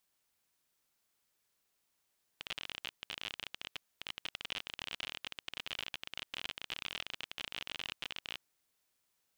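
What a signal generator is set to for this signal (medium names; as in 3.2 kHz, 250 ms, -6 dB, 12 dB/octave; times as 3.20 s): random clicks 38 per s -23 dBFS 5.96 s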